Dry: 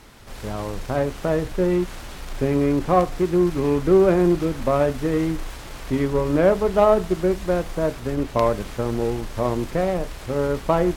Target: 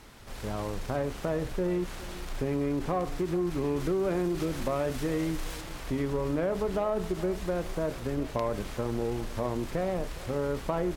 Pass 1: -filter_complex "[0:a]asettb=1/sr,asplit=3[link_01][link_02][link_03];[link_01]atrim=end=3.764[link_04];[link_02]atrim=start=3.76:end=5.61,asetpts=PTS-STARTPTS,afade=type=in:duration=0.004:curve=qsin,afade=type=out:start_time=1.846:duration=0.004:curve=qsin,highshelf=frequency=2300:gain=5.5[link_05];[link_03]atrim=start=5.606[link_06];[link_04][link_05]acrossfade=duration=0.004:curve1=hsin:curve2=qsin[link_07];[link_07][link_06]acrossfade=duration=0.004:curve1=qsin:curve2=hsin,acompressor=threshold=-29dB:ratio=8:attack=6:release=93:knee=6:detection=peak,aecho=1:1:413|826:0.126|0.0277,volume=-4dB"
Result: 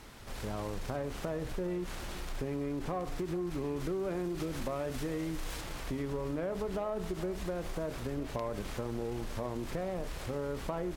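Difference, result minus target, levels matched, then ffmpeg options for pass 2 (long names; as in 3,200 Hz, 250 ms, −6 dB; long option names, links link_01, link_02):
downward compressor: peak gain reduction +6.5 dB
-filter_complex "[0:a]asettb=1/sr,asplit=3[link_01][link_02][link_03];[link_01]atrim=end=3.764[link_04];[link_02]atrim=start=3.76:end=5.61,asetpts=PTS-STARTPTS,afade=type=in:duration=0.004:curve=qsin,afade=type=out:start_time=1.846:duration=0.004:curve=qsin,highshelf=frequency=2300:gain=5.5[link_05];[link_03]atrim=start=5.606[link_06];[link_04][link_05]acrossfade=duration=0.004:curve1=hsin:curve2=qsin[link_07];[link_07][link_06]acrossfade=duration=0.004:curve1=qsin:curve2=hsin,acompressor=threshold=-21.5dB:ratio=8:attack=6:release=93:knee=6:detection=peak,aecho=1:1:413|826:0.126|0.0277,volume=-4dB"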